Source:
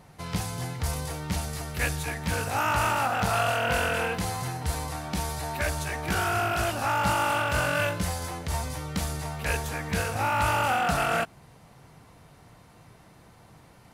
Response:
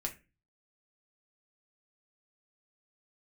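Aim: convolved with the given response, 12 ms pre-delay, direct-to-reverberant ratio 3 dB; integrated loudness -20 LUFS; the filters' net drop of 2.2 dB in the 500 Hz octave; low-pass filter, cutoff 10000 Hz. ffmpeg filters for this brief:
-filter_complex "[0:a]lowpass=10k,equalizer=f=500:t=o:g=-3,asplit=2[a][b];[1:a]atrim=start_sample=2205,adelay=12[c];[b][c]afir=irnorm=-1:irlink=0,volume=-3.5dB[d];[a][d]amix=inputs=2:normalize=0,volume=6.5dB"

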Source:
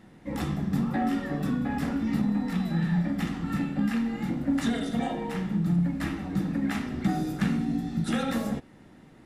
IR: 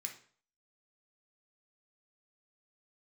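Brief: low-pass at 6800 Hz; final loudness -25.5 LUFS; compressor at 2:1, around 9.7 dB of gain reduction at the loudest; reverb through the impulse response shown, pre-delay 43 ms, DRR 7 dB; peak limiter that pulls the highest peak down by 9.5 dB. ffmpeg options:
-filter_complex "[0:a]lowpass=6.8k,acompressor=threshold=-40dB:ratio=2,alimiter=level_in=9.5dB:limit=-24dB:level=0:latency=1,volume=-9.5dB,asplit=2[a][b];[1:a]atrim=start_sample=2205,adelay=43[c];[b][c]afir=irnorm=-1:irlink=0,volume=-4.5dB[d];[a][d]amix=inputs=2:normalize=0,volume=15.5dB"

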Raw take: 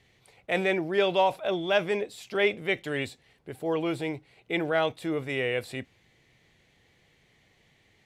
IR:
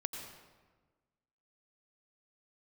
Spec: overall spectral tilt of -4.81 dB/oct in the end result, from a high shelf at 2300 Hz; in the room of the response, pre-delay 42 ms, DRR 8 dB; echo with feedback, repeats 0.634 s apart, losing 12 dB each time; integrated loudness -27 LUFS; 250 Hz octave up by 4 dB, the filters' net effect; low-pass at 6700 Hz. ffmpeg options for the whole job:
-filter_complex "[0:a]lowpass=6.7k,equalizer=f=250:t=o:g=6.5,highshelf=f=2.3k:g=-7.5,aecho=1:1:634|1268|1902:0.251|0.0628|0.0157,asplit=2[a][b];[1:a]atrim=start_sample=2205,adelay=42[c];[b][c]afir=irnorm=-1:irlink=0,volume=-8.5dB[d];[a][d]amix=inputs=2:normalize=0"

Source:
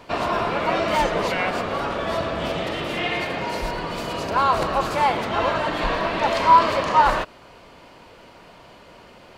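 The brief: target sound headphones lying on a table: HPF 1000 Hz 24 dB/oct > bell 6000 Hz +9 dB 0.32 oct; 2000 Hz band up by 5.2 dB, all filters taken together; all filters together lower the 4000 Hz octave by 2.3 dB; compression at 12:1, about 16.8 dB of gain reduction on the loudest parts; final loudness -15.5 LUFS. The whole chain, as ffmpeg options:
-af "equalizer=f=2k:t=o:g=8.5,equalizer=f=4k:t=o:g=-8.5,acompressor=threshold=-25dB:ratio=12,highpass=f=1k:w=0.5412,highpass=f=1k:w=1.3066,equalizer=f=6k:t=o:w=0.32:g=9,volume=15.5dB"

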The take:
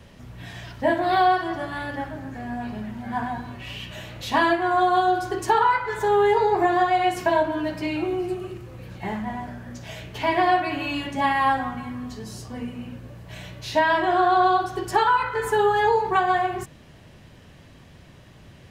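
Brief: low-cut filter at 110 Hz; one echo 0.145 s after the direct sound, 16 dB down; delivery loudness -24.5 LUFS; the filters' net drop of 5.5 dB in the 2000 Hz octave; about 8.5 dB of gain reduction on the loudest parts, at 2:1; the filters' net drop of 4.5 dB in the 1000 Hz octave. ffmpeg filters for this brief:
-af "highpass=110,equalizer=f=1k:t=o:g=-5.5,equalizer=f=2k:t=o:g=-5,acompressor=threshold=-34dB:ratio=2,aecho=1:1:145:0.158,volume=9dB"

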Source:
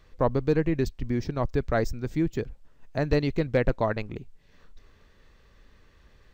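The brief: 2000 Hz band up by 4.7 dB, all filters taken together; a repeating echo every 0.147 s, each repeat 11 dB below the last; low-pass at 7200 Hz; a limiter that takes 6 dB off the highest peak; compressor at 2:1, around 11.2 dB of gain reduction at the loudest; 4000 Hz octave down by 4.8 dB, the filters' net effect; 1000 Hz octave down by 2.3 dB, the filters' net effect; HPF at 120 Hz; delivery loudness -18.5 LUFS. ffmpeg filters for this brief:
-af "highpass=120,lowpass=7.2k,equalizer=f=1k:t=o:g=-5,equalizer=f=2k:t=o:g=9,equalizer=f=4k:t=o:g=-8,acompressor=threshold=-40dB:ratio=2,alimiter=level_in=3.5dB:limit=-24dB:level=0:latency=1,volume=-3.5dB,aecho=1:1:147|294|441:0.282|0.0789|0.0221,volume=21.5dB"

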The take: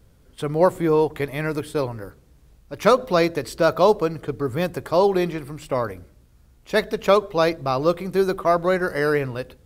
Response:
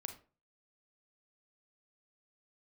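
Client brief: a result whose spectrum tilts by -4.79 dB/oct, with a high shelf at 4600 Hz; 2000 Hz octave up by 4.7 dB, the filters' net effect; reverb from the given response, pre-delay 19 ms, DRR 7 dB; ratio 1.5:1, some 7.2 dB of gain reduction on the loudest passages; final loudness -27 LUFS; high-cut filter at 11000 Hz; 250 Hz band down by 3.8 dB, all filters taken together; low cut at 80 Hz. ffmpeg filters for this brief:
-filter_complex "[0:a]highpass=80,lowpass=11k,equalizer=f=250:t=o:g=-6.5,equalizer=f=2k:t=o:g=5.5,highshelf=f=4.6k:g=4.5,acompressor=threshold=-31dB:ratio=1.5,asplit=2[a][b];[1:a]atrim=start_sample=2205,adelay=19[c];[b][c]afir=irnorm=-1:irlink=0,volume=-4dB[d];[a][d]amix=inputs=2:normalize=0"

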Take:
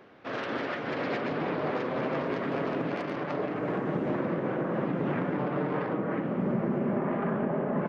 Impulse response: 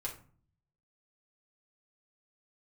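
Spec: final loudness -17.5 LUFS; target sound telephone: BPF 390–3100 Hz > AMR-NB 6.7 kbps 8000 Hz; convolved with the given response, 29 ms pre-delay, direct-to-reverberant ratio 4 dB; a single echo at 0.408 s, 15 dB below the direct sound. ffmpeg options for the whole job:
-filter_complex "[0:a]aecho=1:1:408:0.178,asplit=2[a][b];[1:a]atrim=start_sample=2205,adelay=29[c];[b][c]afir=irnorm=-1:irlink=0,volume=-4.5dB[d];[a][d]amix=inputs=2:normalize=0,highpass=390,lowpass=3.1k,volume=17dB" -ar 8000 -c:a libopencore_amrnb -b:a 6700

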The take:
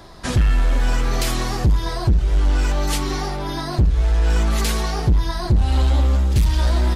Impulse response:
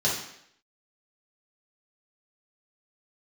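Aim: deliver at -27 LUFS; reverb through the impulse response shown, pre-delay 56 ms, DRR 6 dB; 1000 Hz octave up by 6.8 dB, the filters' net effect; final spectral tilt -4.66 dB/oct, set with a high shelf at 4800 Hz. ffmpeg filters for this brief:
-filter_complex "[0:a]equalizer=f=1k:t=o:g=8,highshelf=f=4.8k:g=6.5,asplit=2[a][b];[1:a]atrim=start_sample=2205,adelay=56[c];[b][c]afir=irnorm=-1:irlink=0,volume=-17.5dB[d];[a][d]amix=inputs=2:normalize=0,volume=-8.5dB"

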